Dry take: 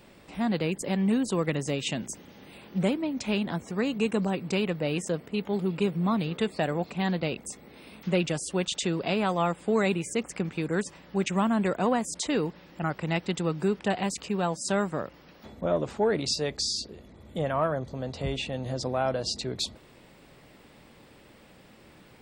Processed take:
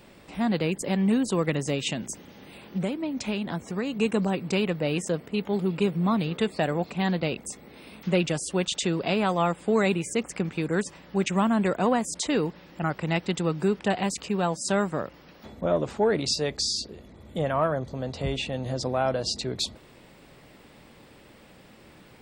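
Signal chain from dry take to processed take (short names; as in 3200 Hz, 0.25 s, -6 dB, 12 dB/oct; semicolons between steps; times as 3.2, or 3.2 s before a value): 1.89–3.99 compressor 3:1, threshold -28 dBFS, peak gain reduction 6.5 dB; gain +2 dB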